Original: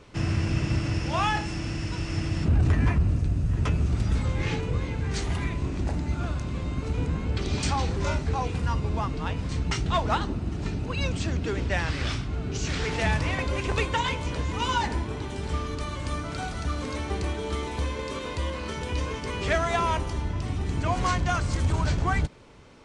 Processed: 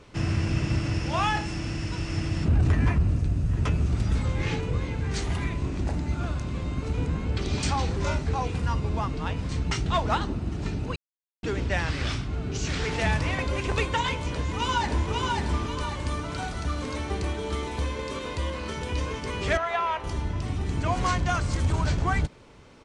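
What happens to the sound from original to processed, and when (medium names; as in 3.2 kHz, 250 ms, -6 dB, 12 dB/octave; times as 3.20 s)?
10.96–11.43 s: mute
14.34–15.12 s: echo throw 540 ms, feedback 40%, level -2.5 dB
19.57–20.04 s: three-band isolator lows -18 dB, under 480 Hz, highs -19 dB, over 3.7 kHz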